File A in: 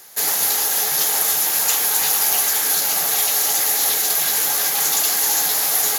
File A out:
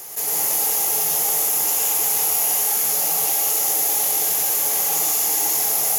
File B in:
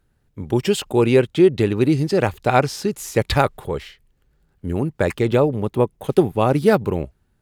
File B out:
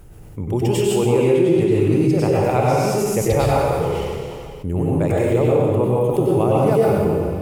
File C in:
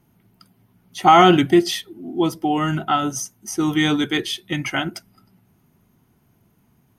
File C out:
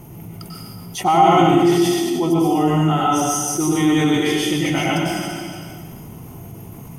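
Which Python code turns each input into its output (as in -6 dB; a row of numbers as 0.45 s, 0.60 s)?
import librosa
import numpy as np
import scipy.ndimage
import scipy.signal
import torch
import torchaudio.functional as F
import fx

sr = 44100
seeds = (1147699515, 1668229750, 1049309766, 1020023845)

y = fx.graphic_eq_15(x, sr, hz=(250, 1600, 4000), db=(-4, -10, -10))
y = fx.rev_plate(y, sr, seeds[0], rt60_s=1.3, hf_ratio=1.0, predelay_ms=85, drr_db=-6.0)
y = fx.env_flatten(y, sr, amount_pct=50)
y = y * librosa.db_to_amplitude(-8.0)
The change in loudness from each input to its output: -1.5 LU, +1.5 LU, +2.0 LU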